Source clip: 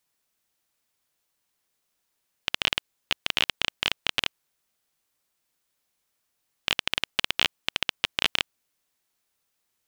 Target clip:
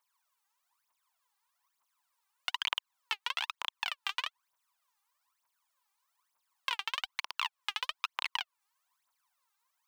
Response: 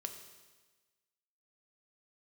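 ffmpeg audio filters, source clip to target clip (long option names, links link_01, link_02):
-filter_complex "[0:a]highpass=frequency=1000:width_type=q:width=5.7,acrossover=split=1600|5100[link_01][link_02][link_03];[link_01]acompressor=threshold=-33dB:ratio=4[link_04];[link_02]acompressor=threshold=-27dB:ratio=4[link_05];[link_03]acompressor=threshold=-46dB:ratio=4[link_06];[link_04][link_05][link_06]amix=inputs=3:normalize=0,aphaser=in_gain=1:out_gain=1:delay=2.6:decay=0.77:speed=1.1:type=triangular,volume=-8.5dB"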